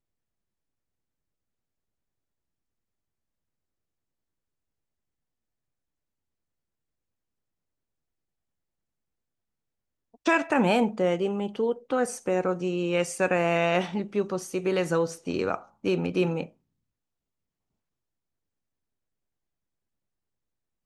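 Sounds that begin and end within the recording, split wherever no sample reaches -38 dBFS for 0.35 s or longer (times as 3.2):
10.26–16.46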